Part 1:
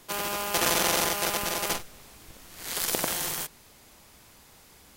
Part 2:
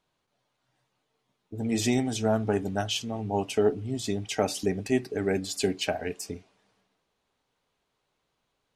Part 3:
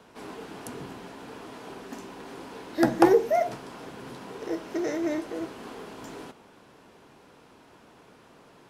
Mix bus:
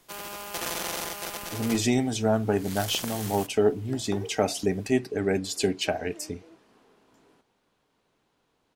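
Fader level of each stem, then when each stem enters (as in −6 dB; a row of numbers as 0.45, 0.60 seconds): −7.5, +1.5, −20.0 decibels; 0.00, 0.00, 1.10 seconds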